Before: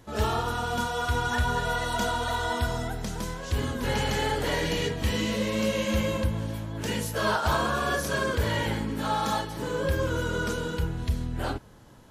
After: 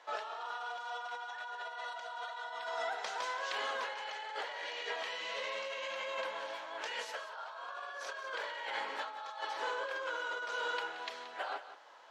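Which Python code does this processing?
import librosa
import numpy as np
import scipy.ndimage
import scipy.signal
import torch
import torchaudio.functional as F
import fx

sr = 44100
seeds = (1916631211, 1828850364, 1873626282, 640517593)

y = scipy.signal.sosfilt(scipy.signal.butter(4, 650.0, 'highpass', fs=sr, output='sos'), x)
y = fx.over_compress(y, sr, threshold_db=-38.0, ratio=-1.0)
y = fx.air_absorb(y, sr, metres=160.0)
y = y + 10.0 ** (-12.5 / 20.0) * np.pad(y, (int(177 * sr / 1000.0), 0))[:len(y)]
y = y * 10.0 ** (-1.5 / 20.0)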